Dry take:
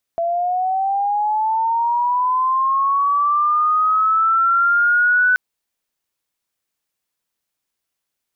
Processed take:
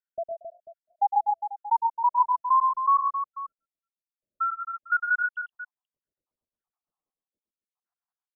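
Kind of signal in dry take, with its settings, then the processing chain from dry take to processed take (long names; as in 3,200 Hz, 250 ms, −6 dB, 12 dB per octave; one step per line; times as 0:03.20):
glide linear 670 Hz → 1,500 Hz −17 dBFS → −11.5 dBFS 5.18 s
time-frequency cells dropped at random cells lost 85%
low-pass filter 1,300 Hz 24 dB per octave
multi-tap delay 108/132/267/491 ms −6.5/−7.5/−9/−15 dB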